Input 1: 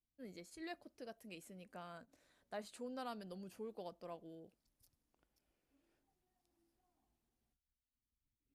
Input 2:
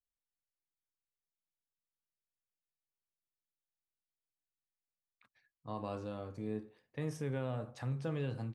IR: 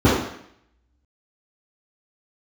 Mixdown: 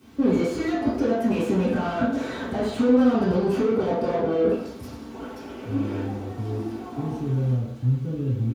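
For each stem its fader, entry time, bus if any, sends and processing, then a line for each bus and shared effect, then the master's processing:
+2.5 dB, 0.00 s, send -5 dB, comb 4.5 ms, depth 40%; compression 4:1, threshold -56 dBFS, peak gain reduction 14 dB; overdrive pedal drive 35 dB, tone 4.5 kHz, clips at -42 dBFS
-9.5 dB, 0.00 s, send -10 dB, peaking EQ 1.1 kHz -10.5 dB 2.8 oct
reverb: on, RT60 0.70 s, pre-delay 3 ms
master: none

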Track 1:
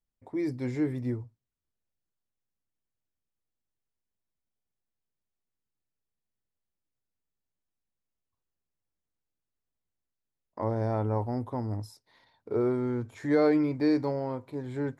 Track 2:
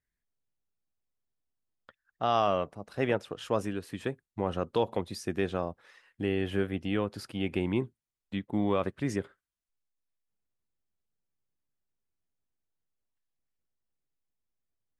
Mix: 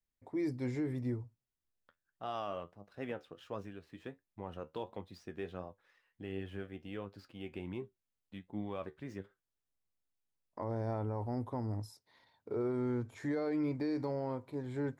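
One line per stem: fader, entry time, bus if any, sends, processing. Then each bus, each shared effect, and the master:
-4.0 dB, 0.00 s, no send, none
-8.5 dB, 0.00 s, no send, median filter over 5 samples; treble shelf 7.7 kHz -4.5 dB; flange 1.4 Hz, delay 9.7 ms, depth 3.8 ms, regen +59%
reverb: none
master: peak limiter -28 dBFS, peak gain reduction 10 dB

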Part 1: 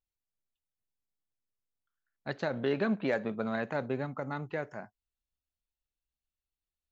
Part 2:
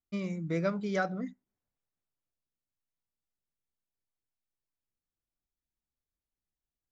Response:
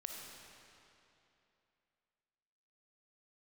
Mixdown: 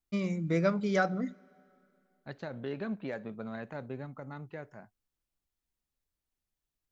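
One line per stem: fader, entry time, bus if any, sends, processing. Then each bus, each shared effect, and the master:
-9.0 dB, 0.00 s, no send, bass shelf 170 Hz +8.5 dB
+2.5 dB, 0.00 s, send -21.5 dB, none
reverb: on, RT60 2.9 s, pre-delay 15 ms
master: none

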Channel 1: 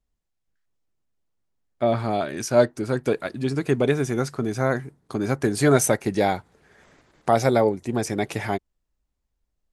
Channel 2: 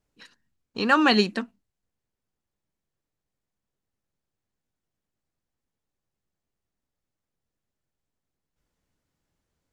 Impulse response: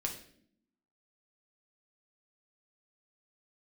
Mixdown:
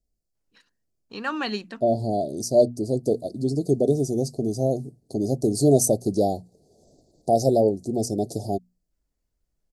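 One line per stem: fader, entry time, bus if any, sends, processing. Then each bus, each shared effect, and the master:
+1.0 dB, 0.00 s, no send, Chebyshev band-stop 700–4400 Hz, order 4
-9.0 dB, 0.35 s, no send, none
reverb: none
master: hum notches 60/120/180/240 Hz

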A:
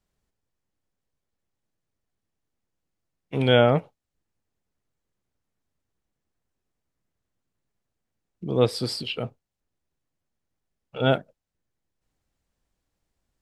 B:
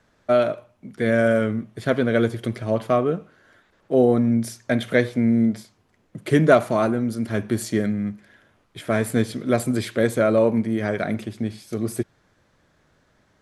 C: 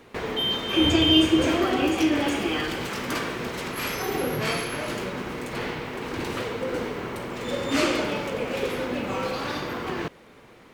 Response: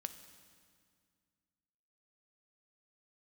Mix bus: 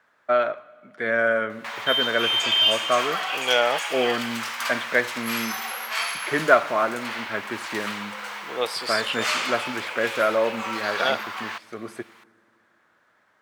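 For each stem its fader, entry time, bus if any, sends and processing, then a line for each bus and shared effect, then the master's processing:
+2.5 dB, 0.00 s, no send, high-pass 770 Hz 12 dB/octave
+1.5 dB, 0.00 s, send -4.5 dB, band-pass filter 1.4 kHz, Q 1.2
+2.5 dB, 1.50 s, no send, inverse Chebyshev high-pass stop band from 190 Hz, stop band 70 dB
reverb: on, RT60 2.0 s, pre-delay 3 ms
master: none

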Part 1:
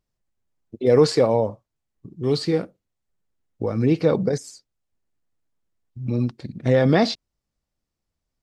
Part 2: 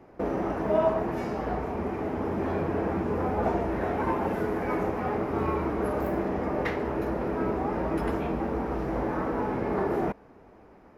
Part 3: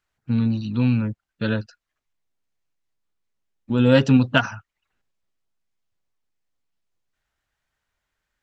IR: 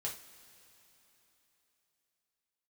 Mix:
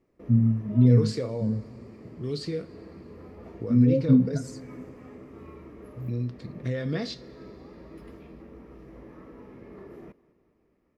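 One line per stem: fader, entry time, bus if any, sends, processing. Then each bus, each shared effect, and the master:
-7.0 dB, 0.00 s, bus A, send -10.5 dB, no echo send, none
-15.5 dB, 0.00 s, bus A, no send, echo send -21 dB, band-stop 1.5 kHz, Q 5.8
-0.5 dB, 0.00 s, no bus, send -3.5 dB, no echo send, low-pass 1.1 kHz; compression, threshold -19 dBFS, peak gain reduction 9 dB; spectral contrast expander 2.5:1
bus A: 0.0 dB, compression 2.5:1, threshold -32 dBFS, peak gain reduction 10 dB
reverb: on, pre-delay 3 ms
echo: feedback delay 205 ms, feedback 57%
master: peaking EQ 800 Hz -13.5 dB 0.69 oct

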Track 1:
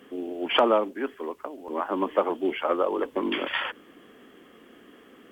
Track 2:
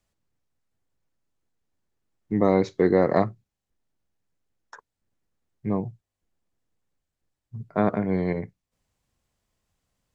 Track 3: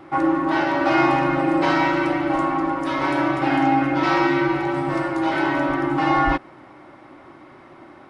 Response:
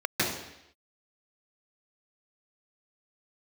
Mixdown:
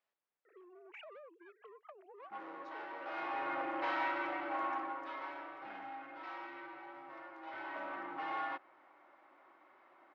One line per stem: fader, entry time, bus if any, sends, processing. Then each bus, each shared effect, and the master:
-2.5 dB, 0.45 s, bus A, no send, formants replaced by sine waves; compression 5:1, threshold -32 dBFS, peak gain reduction 14.5 dB; rotary cabinet horn 5.5 Hz
-4.5 dB, 0.00 s, bus A, no send, compression, threshold -21 dBFS, peak gain reduction 7.5 dB
3.00 s -20.5 dB -> 3.53 s -10.5 dB -> 4.73 s -10.5 dB -> 5.52 s -21.5 dB -> 7.37 s -21.5 dB -> 7.91 s -15 dB, 2.20 s, no bus, no send, saturation -16.5 dBFS, distortion -14 dB
bus A: 0.0 dB, saturation -37 dBFS, distortion -4 dB; compression 6:1, threshold -48 dBFS, peak gain reduction 9 dB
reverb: none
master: band-pass 620–2700 Hz

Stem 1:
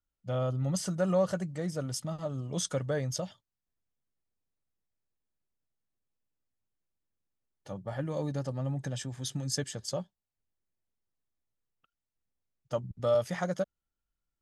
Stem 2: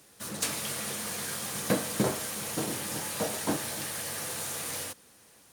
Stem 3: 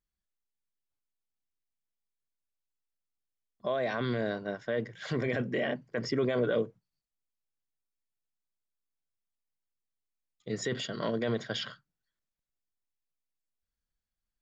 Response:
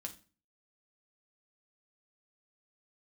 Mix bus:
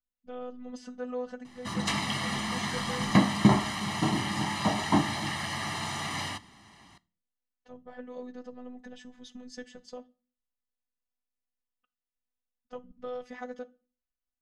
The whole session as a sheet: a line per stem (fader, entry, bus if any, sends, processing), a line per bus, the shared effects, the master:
-8.0 dB, 0.00 s, send -3 dB, robot voice 249 Hz
+2.5 dB, 1.45 s, send -7 dB, comb 1 ms, depth 90%
mute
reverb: on, RT60 0.35 s, pre-delay 5 ms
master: low-pass 3.7 kHz 12 dB/octave

